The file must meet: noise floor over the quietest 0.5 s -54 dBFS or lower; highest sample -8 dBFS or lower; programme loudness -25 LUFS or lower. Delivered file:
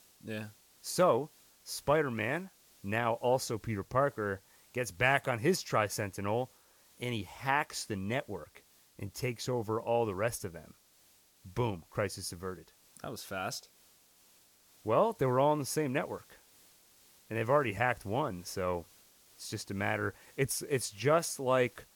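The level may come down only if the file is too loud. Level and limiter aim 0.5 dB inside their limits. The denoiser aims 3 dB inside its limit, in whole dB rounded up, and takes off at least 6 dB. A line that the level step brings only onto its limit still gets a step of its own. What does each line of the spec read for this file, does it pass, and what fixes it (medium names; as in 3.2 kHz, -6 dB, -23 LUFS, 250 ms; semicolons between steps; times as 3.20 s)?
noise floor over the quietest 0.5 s -65 dBFS: pass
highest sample -13.0 dBFS: pass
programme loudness -33.0 LUFS: pass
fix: none needed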